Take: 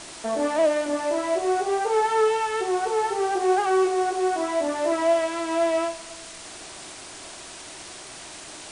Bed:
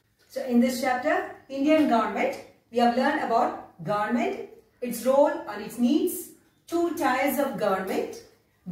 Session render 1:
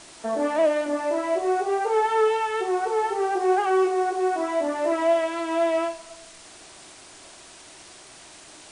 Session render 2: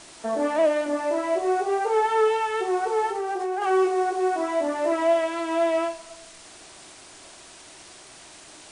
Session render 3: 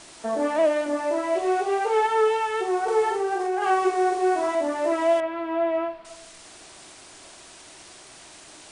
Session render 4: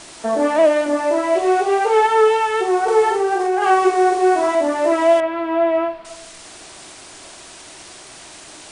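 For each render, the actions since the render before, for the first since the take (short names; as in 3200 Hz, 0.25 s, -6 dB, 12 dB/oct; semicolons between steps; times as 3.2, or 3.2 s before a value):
noise print and reduce 6 dB
3.08–3.62 compressor, threshold -24 dBFS
1.35–2.07 bell 2800 Hz +5 dB 1.1 oct; 2.84–4.55 doubler 41 ms -2 dB; 5.2–6.05 air absorption 430 m
gain +7 dB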